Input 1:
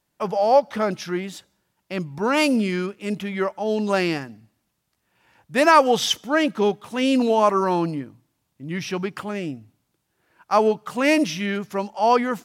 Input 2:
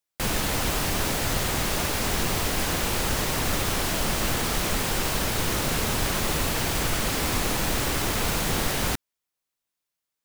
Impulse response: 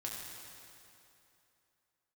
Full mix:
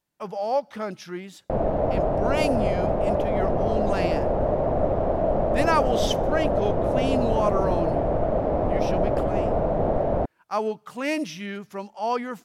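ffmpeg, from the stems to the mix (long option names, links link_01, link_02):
-filter_complex "[0:a]volume=-8dB[link_01];[1:a]lowpass=frequency=630:width_type=q:width=4.9,adelay=1300,volume=1dB[link_02];[link_01][link_02]amix=inputs=2:normalize=0"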